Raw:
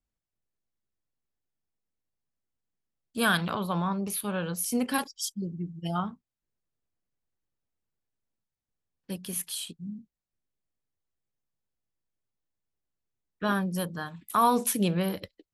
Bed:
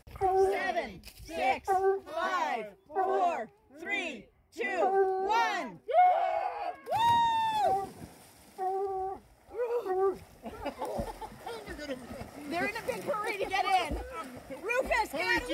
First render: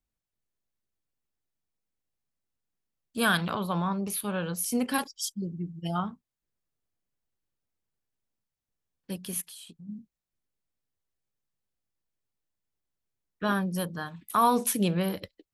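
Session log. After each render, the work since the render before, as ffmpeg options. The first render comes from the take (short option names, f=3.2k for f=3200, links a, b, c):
-filter_complex "[0:a]asplit=3[a][b][c];[a]afade=t=out:st=9.4:d=0.02[d];[b]acompressor=threshold=-45dB:ratio=4:attack=3.2:release=140:knee=1:detection=peak,afade=t=in:st=9.4:d=0.02,afade=t=out:st=9.88:d=0.02[e];[c]afade=t=in:st=9.88:d=0.02[f];[d][e][f]amix=inputs=3:normalize=0,asettb=1/sr,asplit=3[g][h][i];[g]atrim=end=13.494[j];[h]atrim=start=13.49:end=14.66,asetpts=PTS-STARTPTS,afade=t=in:d=0.004:c=qsin,afade=t=out:st=1.166:d=0.004:c=qsin,bandreject=f=7.4k:w=11[k];[i]atrim=start=14.656[l];[j][k]acrossfade=d=0.004:c1=hsin:c2=qsin[m];[m][l]acrossfade=d=0.004:c1=qsin:c2=hsin"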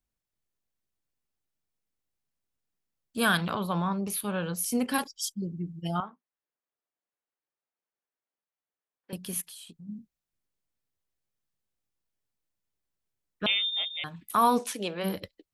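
-filter_complex "[0:a]asettb=1/sr,asplit=3[a][b][c];[a]atrim=end=6.004[d];[b]atrim=start=6:end=9.13,asetpts=PTS-STARTPTS,afade=t=in:d=0.004:c=qsin,afade=t=out:st=3.126:d=0.004:c=qsin,highpass=470,lowpass=2.1k[e];[c]atrim=start=9.126[f];[d][e]acrossfade=d=0.004:c1=hsin:c2=qsin[g];[g][f]acrossfade=d=0.004:c1=qsin:c2=hsin,asettb=1/sr,asplit=3[h][i][j];[h]atrim=end=13.464[k];[i]atrim=start=13.46:end=14.04,asetpts=PTS-STARTPTS,afade=t=in:d=0.004:c=qsin,afade=t=out:st=0.576:d=0.004:c=qsin,lowpass=f=3.2k:t=q:w=0.5098,lowpass=f=3.2k:t=q:w=0.6013,lowpass=f=3.2k:t=q:w=0.9,lowpass=f=3.2k:t=q:w=2.563,afreqshift=-3800[l];[j]atrim=start=14.036[m];[k][l]acrossfade=d=0.004:c1=hsin:c2=qsin[n];[n][m]acrossfade=d=0.004:c1=qsin:c2=hsin,asplit=3[o][p][q];[o]afade=t=out:st=14.58:d=0.02[r];[p]highpass=410,lowpass=6.7k,afade=t=in:st=14.58:d=0.02,afade=t=out:st=15.03:d=0.02[s];[q]afade=t=in:st=15.03:d=0.02[t];[r][s][t]amix=inputs=3:normalize=0"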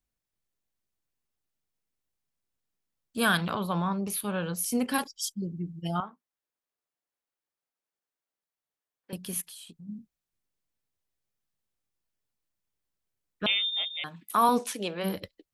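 -filter_complex "[0:a]asettb=1/sr,asplit=3[a][b][c];[a]atrim=end=13.944[d];[b]atrim=start=13.94:end=14.49,asetpts=PTS-STARTPTS,afade=t=in:d=0.004:c=qsin,afade=t=out:st=0.546:d=0.004:c=qsin,highpass=170[e];[c]atrim=start=14.486[f];[d][e]acrossfade=d=0.004:c1=hsin:c2=qsin[g];[g][f]acrossfade=d=0.004:c1=qsin:c2=hsin"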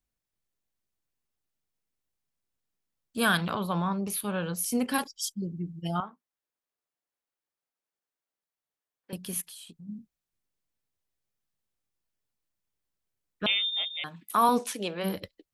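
-af anull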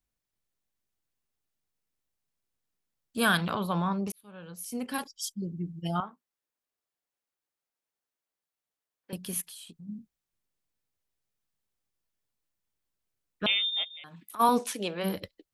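-filter_complex "[0:a]asplit=3[a][b][c];[a]afade=t=out:st=13.83:d=0.02[d];[b]acompressor=threshold=-44dB:ratio=4:attack=3.2:release=140:knee=1:detection=peak,afade=t=in:st=13.83:d=0.02,afade=t=out:st=14.39:d=0.02[e];[c]afade=t=in:st=14.39:d=0.02[f];[d][e][f]amix=inputs=3:normalize=0,asplit=2[g][h];[g]atrim=end=4.12,asetpts=PTS-STARTPTS,afade=t=out:st=4.116:d=0.004:c=hsin[i];[h]atrim=start=4.12,asetpts=PTS-STARTPTS,afade=t=in:d=1.51[j];[i][j]concat=n=2:v=0:a=1"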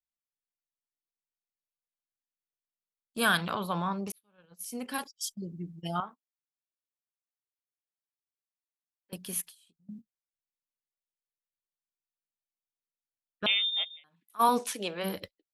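-af "agate=range=-17dB:threshold=-42dB:ratio=16:detection=peak,lowshelf=f=330:g=-6"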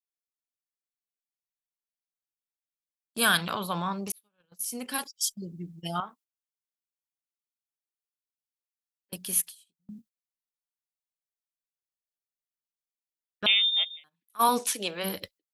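-af "agate=range=-12dB:threshold=-57dB:ratio=16:detection=peak,highshelf=f=2.9k:g=8.5"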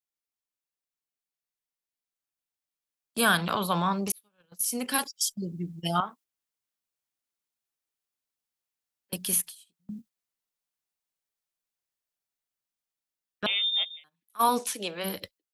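-filter_complex "[0:a]acrossover=split=390|1300[a][b][c];[c]alimiter=limit=-20dB:level=0:latency=1:release=253[d];[a][b][d]amix=inputs=3:normalize=0,dynaudnorm=f=340:g=17:m=5dB"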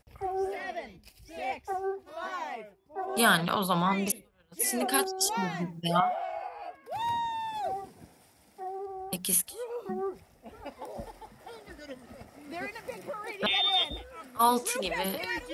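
-filter_complex "[1:a]volume=-5.5dB[a];[0:a][a]amix=inputs=2:normalize=0"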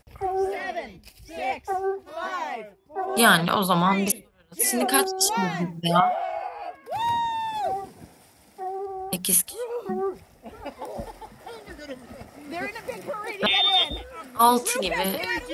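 -af "volume=6dB"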